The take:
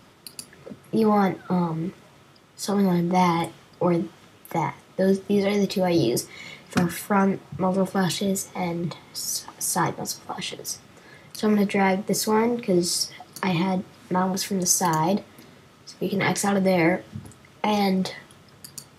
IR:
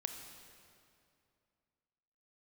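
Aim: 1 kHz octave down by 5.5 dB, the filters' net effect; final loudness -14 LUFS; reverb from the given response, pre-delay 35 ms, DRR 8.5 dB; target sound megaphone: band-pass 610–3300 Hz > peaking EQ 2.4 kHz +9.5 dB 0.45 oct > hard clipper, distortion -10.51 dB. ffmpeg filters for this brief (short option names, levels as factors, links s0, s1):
-filter_complex "[0:a]equalizer=f=1000:t=o:g=-6,asplit=2[s0][s1];[1:a]atrim=start_sample=2205,adelay=35[s2];[s1][s2]afir=irnorm=-1:irlink=0,volume=0.422[s3];[s0][s3]amix=inputs=2:normalize=0,highpass=610,lowpass=3300,equalizer=f=2400:t=o:w=0.45:g=9.5,asoftclip=type=hard:threshold=0.0596,volume=7.94"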